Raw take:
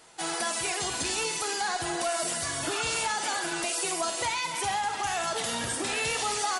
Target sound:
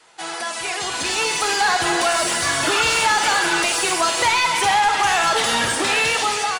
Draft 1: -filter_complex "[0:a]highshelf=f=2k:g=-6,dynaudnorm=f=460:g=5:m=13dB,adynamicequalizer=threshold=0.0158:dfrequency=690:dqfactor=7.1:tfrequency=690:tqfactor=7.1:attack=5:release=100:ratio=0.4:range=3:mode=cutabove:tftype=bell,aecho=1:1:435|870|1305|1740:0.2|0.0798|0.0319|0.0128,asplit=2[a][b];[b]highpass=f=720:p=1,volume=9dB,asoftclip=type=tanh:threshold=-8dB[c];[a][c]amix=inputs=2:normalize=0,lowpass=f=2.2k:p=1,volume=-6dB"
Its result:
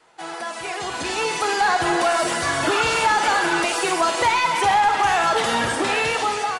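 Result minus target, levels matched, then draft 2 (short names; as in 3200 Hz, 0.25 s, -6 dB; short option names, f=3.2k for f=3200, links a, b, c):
4000 Hz band -3.5 dB
-filter_complex "[0:a]highshelf=f=2k:g=4.5,dynaudnorm=f=460:g=5:m=13dB,adynamicequalizer=threshold=0.0158:dfrequency=690:dqfactor=7.1:tfrequency=690:tqfactor=7.1:attack=5:release=100:ratio=0.4:range=3:mode=cutabove:tftype=bell,aecho=1:1:435|870|1305|1740:0.2|0.0798|0.0319|0.0128,asplit=2[a][b];[b]highpass=f=720:p=1,volume=9dB,asoftclip=type=tanh:threshold=-8dB[c];[a][c]amix=inputs=2:normalize=0,lowpass=f=2.2k:p=1,volume=-6dB"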